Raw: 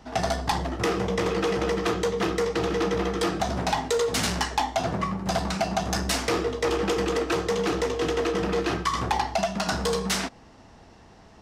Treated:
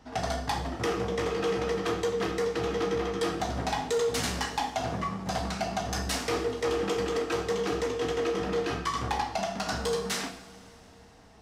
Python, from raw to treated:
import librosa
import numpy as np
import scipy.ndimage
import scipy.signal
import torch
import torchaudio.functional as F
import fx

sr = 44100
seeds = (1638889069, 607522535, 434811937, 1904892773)

y = fx.rev_double_slope(x, sr, seeds[0], early_s=0.53, late_s=3.6, knee_db=-18, drr_db=4.0)
y = y * 10.0 ** (-6.0 / 20.0)